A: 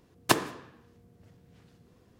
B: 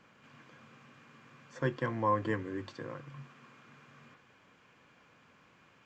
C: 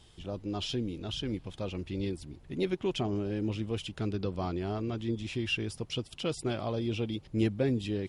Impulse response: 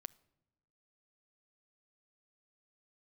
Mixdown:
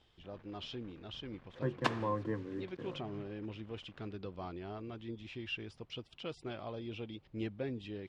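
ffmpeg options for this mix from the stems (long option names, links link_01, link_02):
-filter_complex "[0:a]adelay=1550,volume=-7.5dB[link_01];[1:a]tiltshelf=frequency=830:gain=9,acrusher=bits=7:mix=0:aa=0.5,volume=-5.5dB,asplit=2[link_02][link_03];[2:a]volume=-6.5dB[link_04];[link_03]apad=whole_len=356349[link_05];[link_04][link_05]sidechaincompress=threshold=-36dB:ratio=8:attack=50:release=761[link_06];[link_01][link_02][link_06]amix=inputs=3:normalize=0,lowpass=3400,lowshelf=frequency=430:gain=-6.5"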